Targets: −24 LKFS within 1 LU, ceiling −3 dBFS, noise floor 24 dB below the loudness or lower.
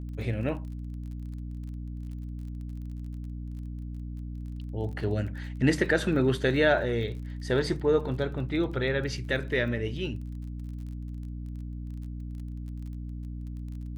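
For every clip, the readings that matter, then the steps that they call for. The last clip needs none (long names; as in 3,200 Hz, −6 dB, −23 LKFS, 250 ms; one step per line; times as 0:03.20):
crackle rate 29 per second; mains hum 60 Hz; hum harmonics up to 300 Hz; level of the hum −34 dBFS; integrated loudness −31.0 LKFS; sample peak −10.5 dBFS; target loudness −24.0 LKFS
→ click removal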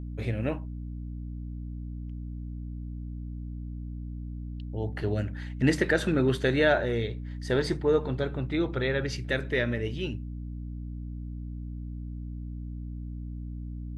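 crackle rate 0.072 per second; mains hum 60 Hz; hum harmonics up to 300 Hz; level of the hum −34 dBFS
→ mains-hum notches 60/120/180/240/300 Hz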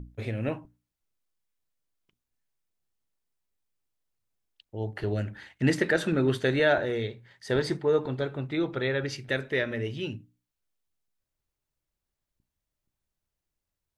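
mains hum none found; integrated loudness −28.5 LKFS; sample peak −10.0 dBFS; target loudness −24.0 LKFS
→ level +4.5 dB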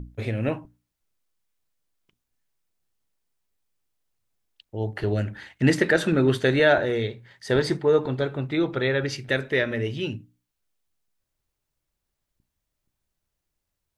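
integrated loudness −24.0 LKFS; sample peak −5.5 dBFS; background noise floor −82 dBFS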